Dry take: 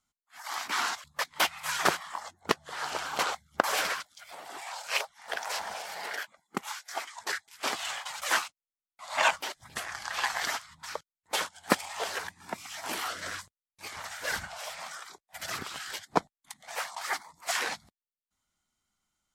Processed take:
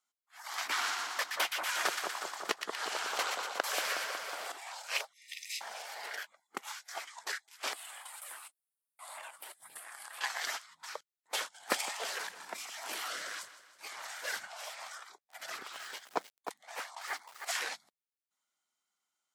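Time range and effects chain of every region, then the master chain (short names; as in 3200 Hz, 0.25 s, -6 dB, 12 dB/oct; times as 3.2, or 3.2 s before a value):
0.58–4.52 split-band echo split 1400 Hz, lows 0.183 s, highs 0.119 s, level -5 dB + three-band squash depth 70%
5.13–5.61 brick-wall FIR high-pass 1800 Hz + comb 0.8 ms, depth 47%
7.73–10.21 resonant high shelf 7600 Hz +8.5 dB, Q 3 + compressor 12:1, threshold -39 dBFS
11.54–14.21 transient shaper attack 0 dB, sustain +9 dB + feedback echo 0.161 s, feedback 52%, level -15.5 dB
14.98–17.45 high shelf 3300 Hz -5 dB + lo-fi delay 0.31 s, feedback 35%, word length 7-bit, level -7 dB
whole clip: HPF 450 Hz 12 dB/oct; dynamic EQ 950 Hz, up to -4 dB, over -41 dBFS, Q 1.3; gain -4 dB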